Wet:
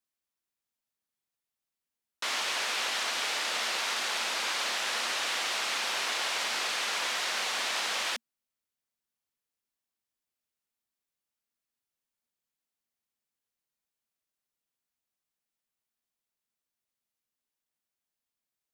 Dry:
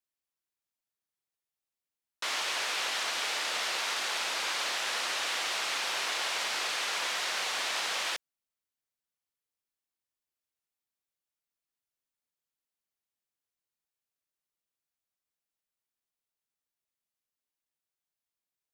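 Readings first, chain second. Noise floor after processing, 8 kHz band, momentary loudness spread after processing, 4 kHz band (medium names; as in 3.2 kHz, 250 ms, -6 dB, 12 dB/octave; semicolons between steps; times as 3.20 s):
under -85 dBFS, +1.0 dB, 1 LU, +1.0 dB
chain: peaking EQ 230 Hz +7 dB 0.23 oct; trim +1 dB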